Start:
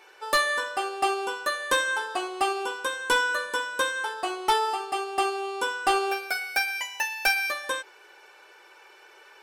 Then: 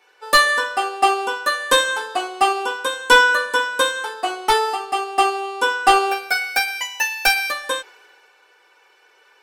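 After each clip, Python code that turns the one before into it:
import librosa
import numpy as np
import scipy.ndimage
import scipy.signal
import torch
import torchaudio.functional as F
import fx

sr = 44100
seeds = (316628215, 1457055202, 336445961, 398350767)

y = x + 0.34 * np.pad(x, (int(4.1 * sr / 1000.0), 0))[:len(x)]
y = fx.band_widen(y, sr, depth_pct=40)
y = y * 10.0 ** (7.0 / 20.0)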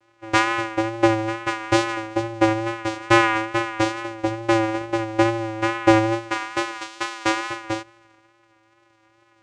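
y = fx.vocoder(x, sr, bands=4, carrier='square', carrier_hz=112.0)
y = fx.vibrato(y, sr, rate_hz=2.3, depth_cents=40.0)
y = y * 10.0 ** (-2.0 / 20.0)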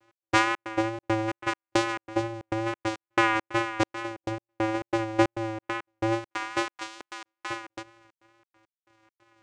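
y = fx.step_gate(x, sr, bpm=137, pattern='x..xx.xxx.xx.', floor_db=-60.0, edge_ms=4.5)
y = y * 10.0 ** (-3.5 / 20.0)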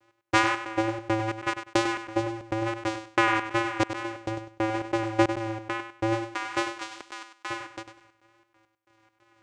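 y = fx.echo_feedback(x, sr, ms=99, feedback_pct=22, wet_db=-9.5)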